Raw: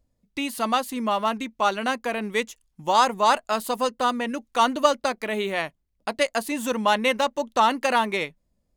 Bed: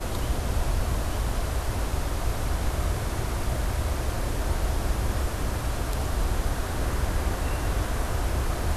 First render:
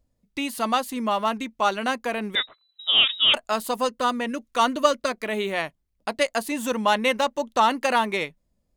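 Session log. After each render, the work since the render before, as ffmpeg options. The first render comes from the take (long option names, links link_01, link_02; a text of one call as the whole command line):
ffmpeg -i in.wav -filter_complex "[0:a]asettb=1/sr,asplit=3[link_01][link_02][link_03];[link_01]atrim=end=2.354[link_04];[link_02]atrim=start=2.35:end=3.34,asetpts=PTS-STARTPTS,afade=type=in:duration=0.004:curve=qsin,afade=type=out:start_time=0.986:duration=0.004:curve=qsin,lowpass=frequency=3400:width_type=q:width=0.5098,lowpass=frequency=3400:width_type=q:width=0.6013,lowpass=frequency=3400:width_type=q:width=0.9,lowpass=frequency=3400:width_type=q:width=2.563,afreqshift=-4000[link_05];[link_03]atrim=start=3.336[link_06];[link_04][link_05]acrossfade=duration=0.004:curve1=hsin:curve2=qsin[link_07];[link_07][link_06]acrossfade=duration=0.004:curve1=qsin:curve2=hsin,asettb=1/sr,asplit=3[link_08][link_09][link_10];[link_08]atrim=end=3.934[link_11];[link_09]atrim=start=3.93:end=5.25,asetpts=PTS-STARTPTS,afade=type=in:duration=0.004:curve=qsin,afade=type=out:start_time=1.316:duration=0.004:curve=qsin,asuperstop=centerf=820:order=4:qfactor=5.6[link_12];[link_10]atrim=start=5.246[link_13];[link_11][link_12]acrossfade=duration=0.004:curve1=hsin:curve2=qsin[link_14];[link_14][link_13]acrossfade=duration=0.004:curve1=qsin:curve2=hsin" out.wav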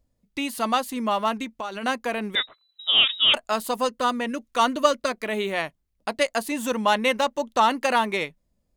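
ffmpeg -i in.wav -filter_complex "[0:a]asettb=1/sr,asplit=3[link_01][link_02][link_03];[link_01]atrim=end=1.444[link_04];[link_02]atrim=start=1.44:end=1.84,asetpts=PTS-STARTPTS,afade=type=in:duration=0.004:curve=qsin,afade=type=out:start_time=0.396:duration=0.004:curve=qsin,acompressor=threshold=-27dB:ratio=12:attack=3.2:release=140:knee=1:detection=peak[link_05];[link_03]atrim=start=1.836[link_06];[link_04][link_05]acrossfade=duration=0.004:curve1=hsin:curve2=qsin[link_07];[link_07][link_06]acrossfade=duration=0.004:curve1=qsin:curve2=hsin" out.wav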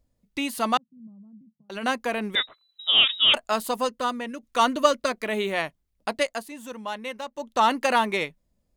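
ffmpeg -i in.wav -filter_complex "[0:a]asettb=1/sr,asplit=3[link_01][link_02][link_03];[link_01]atrim=end=0.774[link_04];[link_02]atrim=start=0.77:end=1.7,asetpts=PTS-STARTPTS,afade=type=in:duration=0.004:curve=qsin,afade=type=out:start_time=0.926:duration=0.004:curve=qsin,asuperpass=centerf=160:order=4:qfactor=3.6[link_05];[link_03]atrim=start=1.696[link_06];[link_04][link_05]acrossfade=duration=0.004:curve1=hsin:curve2=qsin[link_07];[link_07][link_06]acrossfade=duration=0.004:curve1=qsin:curve2=hsin,asplit=4[link_08][link_09][link_10][link_11];[link_08]atrim=end=4.43,asetpts=PTS-STARTPTS,afade=type=out:start_time=3.61:duration=0.82:silence=0.421697[link_12];[link_09]atrim=start=4.43:end=6.49,asetpts=PTS-STARTPTS,afade=type=in:duration=0.004:curve=hsin:silence=0.421697,afade=type=out:start_time=1.69:duration=0.37:silence=0.251189[link_13];[link_10]atrim=start=6.49:end=7.31,asetpts=PTS-STARTPTS,volume=-12dB[link_14];[link_11]atrim=start=7.31,asetpts=PTS-STARTPTS,afade=type=in:duration=0.37:silence=0.251189[link_15];[link_12][link_13][link_14][link_15]concat=n=4:v=0:a=1" out.wav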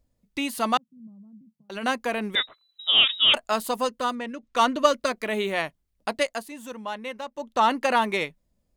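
ffmpeg -i in.wav -filter_complex "[0:a]asettb=1/sr,asplit=3[link_01][link_02][link_03];[link_01]atrim=end=4.154[link_04];[link_02]atrim=start=4.15:end=4.91,asetpts=PTS-STARTPTS,afade=type=in:duration=0.004:curve=qsin,afade=type=out:start_time=0.756:duration=0.004:curve=qsin,adynamicsmooth=sensitivity=6:basefreq=5400[link_05];[link_03]atrim=start=4.906[link_06];[link_04][link_05]acrossfade=duration=0.004:curve1=hsin:curve2=qsin[link_07];[link_07][link_06]acrossfade=duration=0.004:curve1=qsin:curve2=hsin,asettb=1/sr,asplit=3[link_08][link_09][link_10];[link_08]atrim=end=6.734[link_11];[link_09]atrim=start=6.73:end=8.02,asetpts=PTS-STARTPTS,afade=type=in:duration=0.004:curve=qsin,afade=type=out:start_time=1.286:duration=0.004:curve=qsin,highshelf=frequency=4200:gain=-5[link_12];[link_10]atrim=start=8.016[link_13];[link_11][link_12]acrossfade=duration=0.004:curve1=hsin:curve2=qsin[link_14];[link_14][link_13]acrossfade=duration=0.004:curve1=qsin:curve2=hsin" out.wav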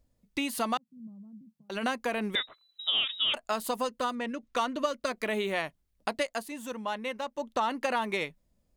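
ffmpeg -i in.wav -af "acompressor=threshold=-27dB:ratio=4" out.wav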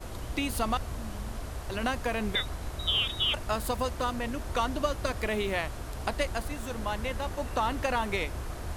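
ffmpeg -i in.wav -i bed.wav -filter_complex "[1:a]volume=-10dB[link_01];[0:a][link_01]amix=inputs=2:normalize=0" out.wav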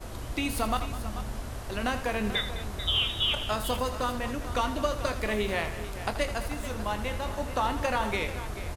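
ffmpeg -i in.wav -filter_complex "[0:a]asplit=2[link_01][link_02];[link_02]adelay=24,volume=-10.5dB[link_03];[link_01][link_03]amix=inputs=2:normalize=0,asplit=2[link_04][link_05];[link_05]aecho=0:1:81|207|438:0.266|0.178|0.224[link_06];[link_04][link_06]amix=inputs=2:normalize=0" out.wav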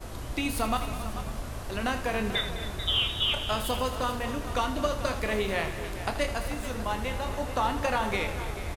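ffmpeg -i in.wav -filter_complex "[0:a]asplit=2[link_01][link_02];[link_02]adelay=31,volume=-12dB[link_03];[link_01][link_03]amix=inputs=2:normalize=0,asplit=7[link_04][link_05][link_06][link_07][link_08][link_09][link_10];[link_05]adelay=272,afreqshift=-44,volume=-14dB[link_11];[link_06]adelay=544,afreqshift=-88,volume=-19.2dB[link_12];[link_07]adelay=816,afreqshift=-132,volume=-24.4dB[link_13];[link_08]adelay=1088,afreqshift=-176,volume=-29.6dB[link_14];[link_09]adelay=1360,afreqshift=-220,volume=-34.8dB[link_15];[link_10]adelay=1632,afreqshift=-264,volume=-40dB[link_16];[link_04][link_11][link_12][link_13][link_14][link_15][link_16]amix=inputs=7:normalize=0" out.wav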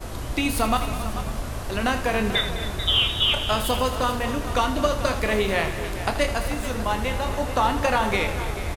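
ffmpeg -i in.wav -af "volume=6dB" out.wav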